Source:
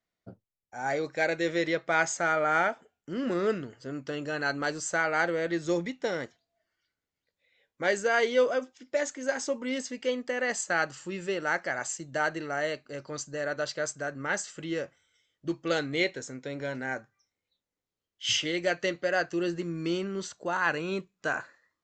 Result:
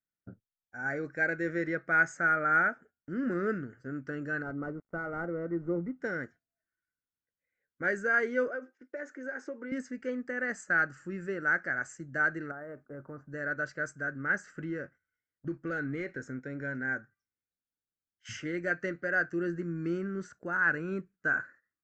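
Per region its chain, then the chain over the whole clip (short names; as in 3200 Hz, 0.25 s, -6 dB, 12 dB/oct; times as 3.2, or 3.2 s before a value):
4.42–6.01 switching dead time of 0.13 ms + upward compressor, threshold -46 dBFS + polynomial smoothing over 65 samples
8.48–9.72 compressor 2.5:1, threshold -33 dBFS + resonant high-pass 390 Hz, resonance Q 1.6 + air absorption 94 m
12.51–13.32 synth low-pass 950 Hz, resonance Q 2.3 + compressor 4:1, threshold -34 dBFS + companded quantiser 8-bit
14.35–16.42 sample leveller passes 1 + compressor 2:1, threshold -32 dBFS + air absorption 56 m
whole clip: EQ curve 270 Hz 0 dB, 990 Hz -14 dB, 1500 Hz +5 dB, 3500 Hz -26 dB, 5500 Hz -15 dB; gate -54 dBFS, range -10 dB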